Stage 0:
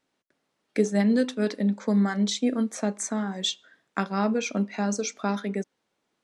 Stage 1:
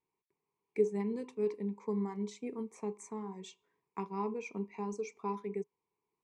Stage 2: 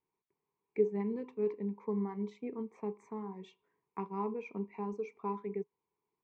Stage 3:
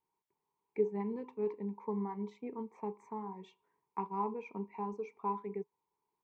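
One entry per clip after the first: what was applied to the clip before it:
FFT filter 160 Hz 0 dB, 270 Hz -11 dB, 420 Hz +6 dB, 590 Hz -20 dB, 1 kHz +7 dB, 1.5 kHz -25 dB, 2.3 kHz -1 dB, 3.4 kHz -19 dB, 7.9 kHz -10 dB, 13 kHz -13 dB; trim -8.5 dB
low-pass 2.3 kHz 12 dB/octave
peaking EQ 900 Hz +10 dB 0.39 oct; trim -2.5 dB

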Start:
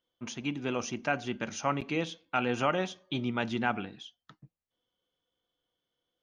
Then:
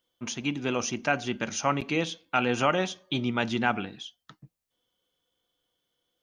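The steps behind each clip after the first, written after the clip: treble shelf 4.1 kHz +6 dB; trim +3.5 dB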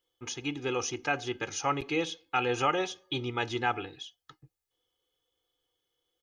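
comb 2.4 ms, depth 87%; trim -5 dB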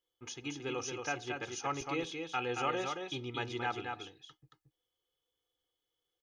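delay 226 ms -5 dB; trim -7 dB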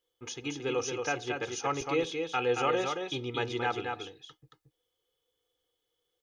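small resonant body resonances 470/3600 Hz, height 7 dB, ringing for 30 ms; trim +4 dB

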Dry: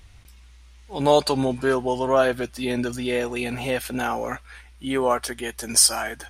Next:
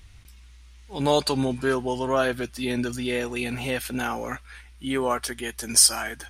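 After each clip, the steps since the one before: peaking EQ 650 Hz -5.5 dB 1.4 oct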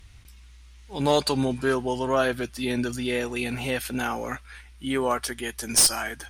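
one-sided clip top -16.5 dBFS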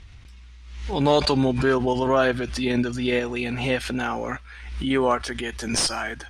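in parallel at -2 dB: level held to a coarse grid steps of 13 dB; on the sum: distance through air 90 m; swell ahead of each attack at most 62 dB/s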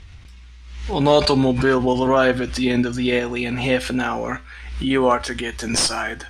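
feedback comb 85 Hz, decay 0.29 s, harmonics all, mix 50%; trim +7.5 dB

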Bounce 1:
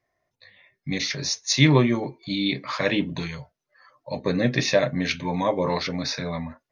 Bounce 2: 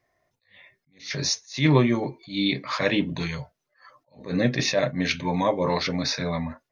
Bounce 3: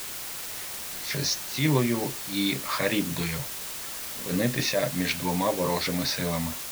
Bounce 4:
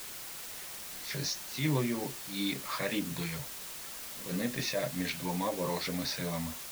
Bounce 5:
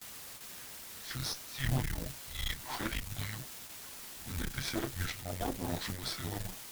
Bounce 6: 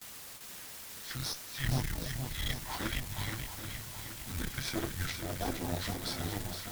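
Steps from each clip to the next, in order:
in parallel at +0.5 dB: compression, threshold -30 dBFS, peak gain reduction 17.5 dB; on the sum: attacks held to a fixed rise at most 180 dB/s; trim -2 dB
compression 1.5:1, threshold -27 dBFS, peak gain reduction 5.5 dB; word length cut 6-bit, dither triangular
flange 2 Hz, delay 3.6 ms, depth 2.9 ms, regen -54%; endings held to a fixed fall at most 200 dB/s; trim -3 dB
frequency shift -270 Hz; Chebyshev shaper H 4 -10 dB, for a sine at -18 dBFS; gate with hold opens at -31 dBFS; trim -4 dB
shuffle delay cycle 780 ms, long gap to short 1.5:1, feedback 42%, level -7 dB

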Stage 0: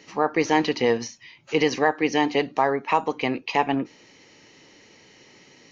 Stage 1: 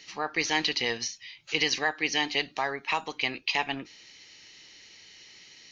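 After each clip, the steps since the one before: graphic EQ 125/250/500/1000/4000 Hz -8/-10/-10/-7/+7 dB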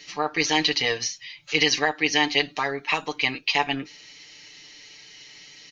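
comb 6.8 ms, depth 77%; trim +3 dB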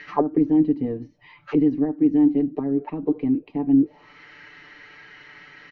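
in parallel at -3 dB: saturation -13 dBFS, distortion -16 dB; on the sum: touch-sensitive low-pass 270–1800 Hz down, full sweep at -18.5 dBFS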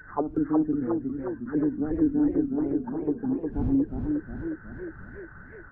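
knee-point frequency compression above 1.4 kHz 4:1; wind noise 94 Hz -35 dBFS; modulated delay 363 ms, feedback 57%, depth 174 cents, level -4.5 dB; trim -7 dB

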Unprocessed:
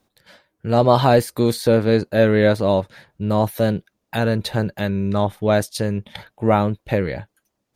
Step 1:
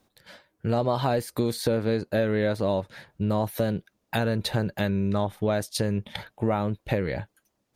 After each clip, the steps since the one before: compression 5:1, threshold -22 dBFS, peak gain reduction 12 dB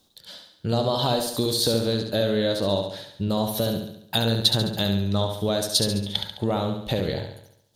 resonant high shelf 2.8 kHz +7 dB, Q 3; flutter echo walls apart 12 m, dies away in 0.71 s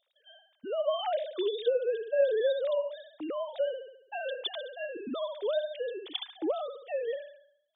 formants replaced by sine waves; trim -7.5 dB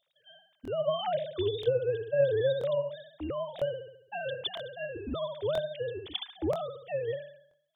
octave divider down 2 oct, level -3 dB; crackling interface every 0.98 s, samples 1024, repeat, from 0.63 s

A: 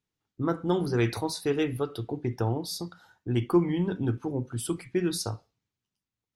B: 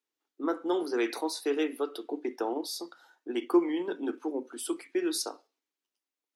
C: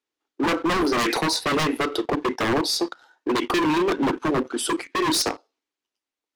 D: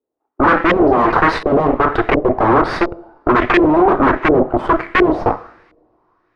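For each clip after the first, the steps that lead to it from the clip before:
steep high-pass 270 Hz 48 dB/octave; in parallel at -2 dB: level held to a coarse grid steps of 11 dB; on the sum: trim -4 dB
waveshaping leveller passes 2; distance through air 50 m; wavefolder -24.5 dBFS; trim +8.5 dB
Chebyshev shaper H 4 -8 dB, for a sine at -15.5 dBFS; two-slope reverb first 0.71 s, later 3.3 s, from -26 dB, DRR 13 dB; LFO low-pass saw up 1.4 Hz 480–2200 Hz; trim +6.5 dB

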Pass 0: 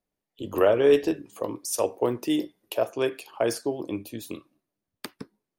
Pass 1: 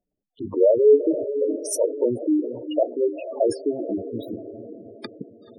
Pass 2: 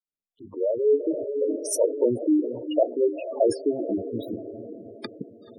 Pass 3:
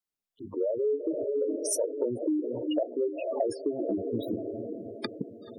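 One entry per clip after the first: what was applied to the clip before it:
echo that smears into a reverb 452 ms, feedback 49%, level -10 dB; spectral gate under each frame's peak -10 dB strong; trim +4.5 dB
fade-in on the opening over 1.82 s
compression 6:1, threshold -28 dBFS, peak gain reduction 12.5 dB; trim +2 dB

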